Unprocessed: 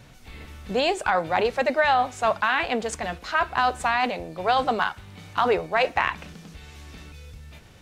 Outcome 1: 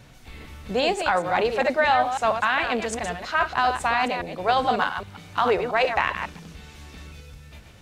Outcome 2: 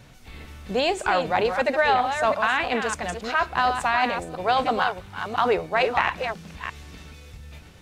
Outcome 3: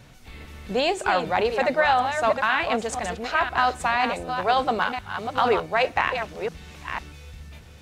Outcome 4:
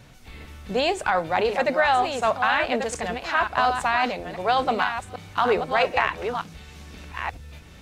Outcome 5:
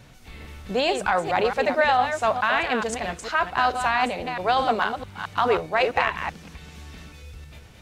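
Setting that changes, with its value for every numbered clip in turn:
chunks repeated in reverse, time: 136 ms, 335 ms, 499 ms, 737 ms, 219 ms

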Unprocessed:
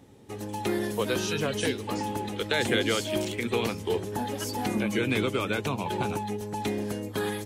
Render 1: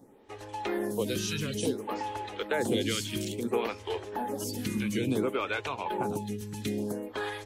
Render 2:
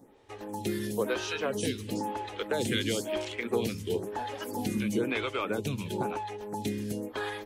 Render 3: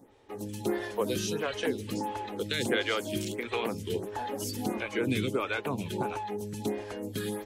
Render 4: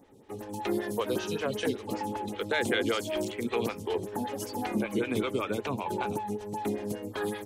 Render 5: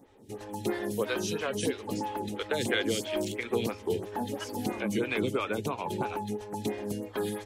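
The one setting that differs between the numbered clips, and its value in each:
lamp-driven phase shifter, rate: 0.58 Hz, 1 Hz, 1.5 Hz, 5.2 Hz, 3 Hz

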